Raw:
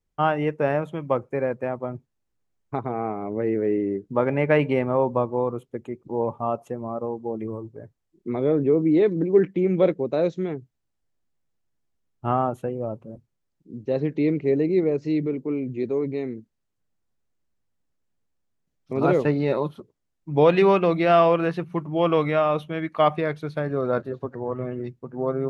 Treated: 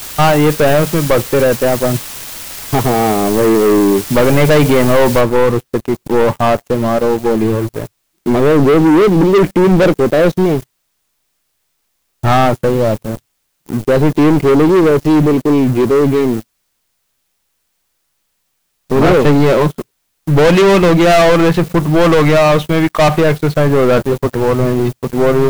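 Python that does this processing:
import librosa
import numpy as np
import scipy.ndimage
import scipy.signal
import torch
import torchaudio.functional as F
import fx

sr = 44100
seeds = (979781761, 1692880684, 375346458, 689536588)

y = fx.noise_floor_step(x, sr, seeds[0], at_s=5.21, before_db=-43, after_db=-57, tilt_db=0.0)
y = fx.leveller(y, sr, passes=5)
y = fx.low_shelf(y, sr, hz=73.0, db=8.5)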